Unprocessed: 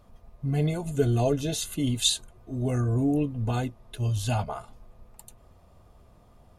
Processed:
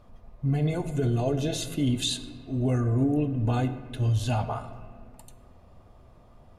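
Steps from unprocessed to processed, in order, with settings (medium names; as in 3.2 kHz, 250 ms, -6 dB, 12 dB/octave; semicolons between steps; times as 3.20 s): treble shelf 6.3 kHz -10 dB; peak limiter -20 dBFS, peak gain reduction 8 dB; on a send: reverberation RT60 1.8 s, pre-delay 3 ms, DRR 9 dB; on the sum: trim +2 dB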